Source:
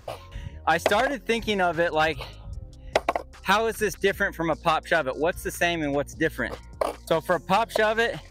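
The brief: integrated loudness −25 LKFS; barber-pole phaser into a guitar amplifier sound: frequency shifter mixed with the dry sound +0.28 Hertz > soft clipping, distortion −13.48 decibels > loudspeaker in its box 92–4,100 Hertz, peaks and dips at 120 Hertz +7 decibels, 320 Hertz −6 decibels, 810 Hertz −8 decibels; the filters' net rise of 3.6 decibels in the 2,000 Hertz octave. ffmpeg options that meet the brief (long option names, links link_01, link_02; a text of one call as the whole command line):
ffmpeg -i in.wav -filter_complex "[0:a]equalizer=frequency=2000:width_type=o:gain=5,asplit=2[link_01][link_02];[link_02]afreqshift=0.28[link_03];[link_01][link_03]amix=inputs=2:normalize=1,asoftclip=threshold=-19dB,highpass=92,equalizer=frequency=120:width_type=q:width=4:gain=7,equalizer=frequency=320:width_type=q:width=4:gain=-6,equalizer=frequency=810:width_type=q:width=4:gain=-8,lowpass=frequency=4100:width=0.5412,lowpass=frequency=4100:width=1.3066,volume=5.5dB" out.wav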